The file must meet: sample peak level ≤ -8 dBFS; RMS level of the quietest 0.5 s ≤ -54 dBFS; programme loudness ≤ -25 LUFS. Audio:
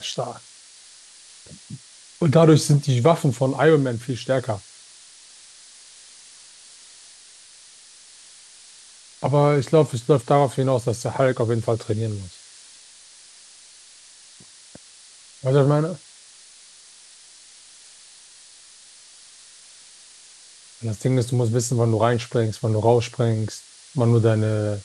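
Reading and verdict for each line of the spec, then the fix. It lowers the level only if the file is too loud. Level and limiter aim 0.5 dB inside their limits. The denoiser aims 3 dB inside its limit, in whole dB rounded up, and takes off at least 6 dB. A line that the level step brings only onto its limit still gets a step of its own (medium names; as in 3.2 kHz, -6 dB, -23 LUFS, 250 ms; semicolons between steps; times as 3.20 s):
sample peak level -4.5 dBFS: fail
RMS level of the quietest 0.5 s -48 dBFS: fail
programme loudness -21.0 LUFS: fail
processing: noise reduction 6 dB, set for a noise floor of -48 dBFS; trim -4.5 dB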